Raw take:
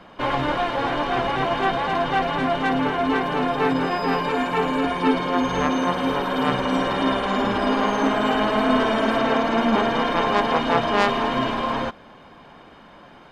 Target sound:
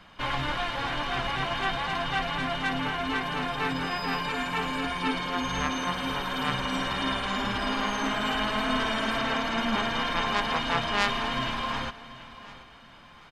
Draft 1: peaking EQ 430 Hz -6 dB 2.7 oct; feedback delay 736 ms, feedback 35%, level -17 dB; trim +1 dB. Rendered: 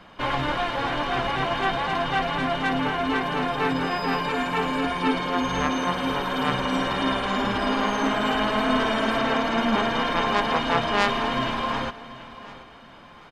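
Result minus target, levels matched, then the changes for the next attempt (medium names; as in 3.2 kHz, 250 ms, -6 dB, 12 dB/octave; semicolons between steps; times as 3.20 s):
500 Hz band +3.5 dB
change: peaking EQ 430 Hz -14.5 dB 2.7 oct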